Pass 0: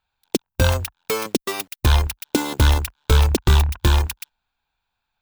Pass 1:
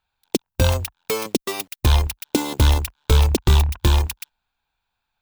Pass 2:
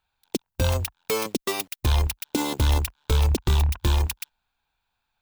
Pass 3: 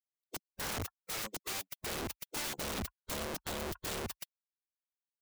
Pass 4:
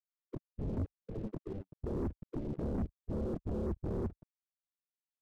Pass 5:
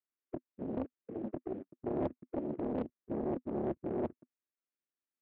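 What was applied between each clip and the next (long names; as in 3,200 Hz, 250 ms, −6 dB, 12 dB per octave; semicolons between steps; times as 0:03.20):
dynamic equaliser 1,500 Hz, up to −6 dB, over −40 dBFS, Q 2.2
brickwall limiter −13 dBFS, peak gain reduction 7 dB
spectral dynamics exaggerated over time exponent 2; downward compressor 10 to 1, threshold −26 dBFS, peak gain reduction 8.5 dB; wrap-around overflow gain 33 dB
spectral envelope exaggerated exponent 2; Gaussian smoothing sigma 24 samples; leveller curve on the samples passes 3; level +2.5 dB
loudspeaker in its box 240–2,300 Hz, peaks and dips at 250 Hz +9 dB, 350 Hz +7 dB, 820 Hz −8 dB; highs frequency-modulated by the lows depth 0.87 ms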